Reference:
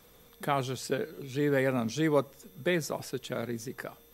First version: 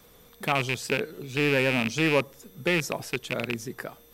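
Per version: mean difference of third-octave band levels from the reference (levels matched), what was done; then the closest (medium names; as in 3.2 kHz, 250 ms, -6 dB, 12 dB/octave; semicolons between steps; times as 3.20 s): 2.5 dB: rattle on loud lows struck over -34 dBFS, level -17 dBFS; in parallel at -7 dB: saturation -23 dBFS, distortion -11 dB; on the sum: wow and flutter 18 cents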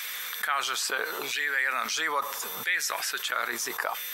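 14.0 dB: hum 50 Hz, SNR 22 dB; LFO high-pass saw down 0.76 Hz 890–2000 Hz; level flattener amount 70%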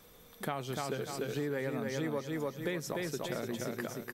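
8.0 dB: hum notches 60/120 Hz; on a send: feedback delay 295 ms, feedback 34%, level -4 dB; on the sum: compression, threshold -32 dBFS, peak gain reduction 12 dB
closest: first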